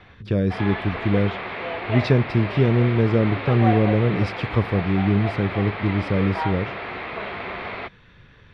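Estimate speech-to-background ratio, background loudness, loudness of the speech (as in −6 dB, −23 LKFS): 8.0 dB, −29.5 LKFS, −21.5 LKFS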